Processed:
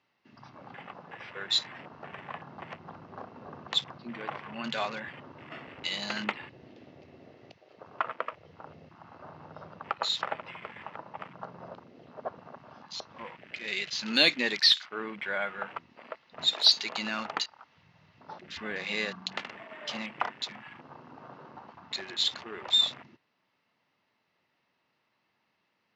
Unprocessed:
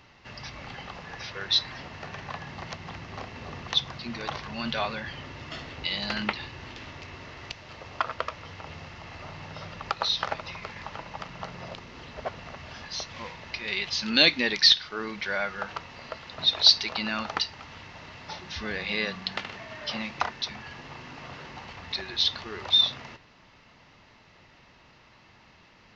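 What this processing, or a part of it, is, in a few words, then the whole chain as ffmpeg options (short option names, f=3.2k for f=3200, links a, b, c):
over-cleaned archive recording: -af "highpass=180,lowpass=5.9k,afwtdn=0.01,volume=-2.5dB"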